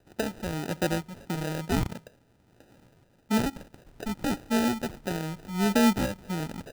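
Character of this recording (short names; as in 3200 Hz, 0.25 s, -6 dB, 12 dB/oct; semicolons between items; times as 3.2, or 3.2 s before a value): phasing stages 4, 1.6 Hz, lowest notch 410–1200 Hz; a quantiser's noise floor 12-bit, dither triangular; tremolo saw up 0.99 Hz, depth 40%; aliases and images of a low sample rate 1100 Hz, jitter 0%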